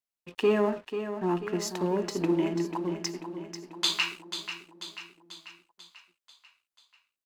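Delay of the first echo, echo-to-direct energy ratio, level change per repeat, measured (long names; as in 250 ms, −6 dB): 490 ms, −8.0 dB, −5.0 dB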